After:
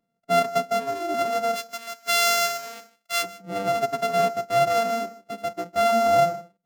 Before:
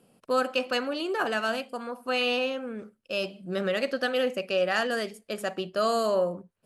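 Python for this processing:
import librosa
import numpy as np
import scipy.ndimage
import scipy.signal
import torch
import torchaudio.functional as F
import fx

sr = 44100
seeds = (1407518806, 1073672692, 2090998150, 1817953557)

y = np.r_[np.sort(x[:len(x) // 64 * 64].reshape(-1, 64), axis=1).ravel(), x[len(x) // 64 * 64:]]
y = fx.tilt_shelf(y, sr, db=-9.0, hz=970.0, at=(1.55, 3.22), fade=0.02)
y = y + 10.0 ** (-14.0 / 20.0) * np.pad(y, (int(154 * sr / 1000.0), 0))[:len(y)]
y = fx.spectral_expand(y, sr, expansion=1.5)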